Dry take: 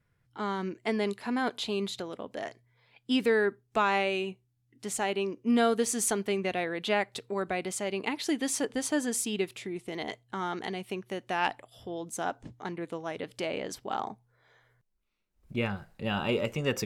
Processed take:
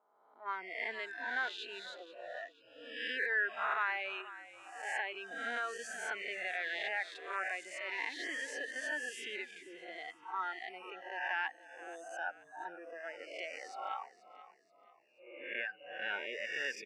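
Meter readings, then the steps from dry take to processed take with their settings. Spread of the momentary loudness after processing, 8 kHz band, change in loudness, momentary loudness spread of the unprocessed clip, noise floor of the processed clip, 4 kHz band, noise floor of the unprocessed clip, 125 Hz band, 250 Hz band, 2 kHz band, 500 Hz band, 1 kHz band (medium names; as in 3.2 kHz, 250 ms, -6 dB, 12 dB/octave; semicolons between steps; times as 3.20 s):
13 LU, -17.0 dB, -7.5 dB, 12 LU, -66 dBFS, -8.0 dB, -74 dBFS, under -35 dB, -24.5 dB, 0.0 dB, -15.0 dB, -7.5 dB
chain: reverse spectral sustain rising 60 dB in 1.43 s; high-pass 290 Hz 12 dB/octave; spectral noise reduction 24 dB; low-pass 11 kHz 12 dB/octave; reverb removal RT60 0.64 s; peak limiter -19.5 dBFS, peak gain reduction 8 dB; auto-wah 690–1600 Hz, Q 2.2, up, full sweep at -29.5 dBFS; frequency-shifting echo 481 ms, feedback 39%, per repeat -45 Hz, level -16 dB; trim +1 dB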